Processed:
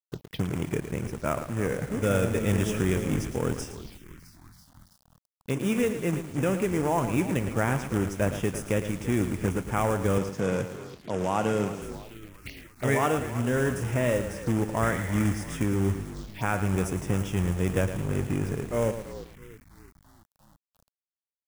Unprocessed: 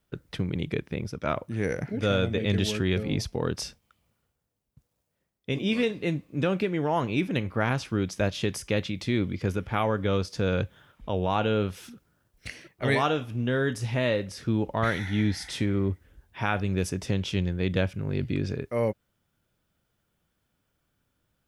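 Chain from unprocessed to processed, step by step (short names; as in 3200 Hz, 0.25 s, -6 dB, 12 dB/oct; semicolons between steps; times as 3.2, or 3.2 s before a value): frequency-shifting echo 0.33 s, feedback 57%, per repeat -51 Hz, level -14.5 dB; companded quantiser 4-bit; envelope phaser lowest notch 320 Hz, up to 4200 Hz, full sweep at -30 dBFS; 10.18–11.82 Chebyshev band-pass 150–6600 Hz, order 2; lo-fi delay 0.112 s, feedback 35%, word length 7-bit, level -9.5 dB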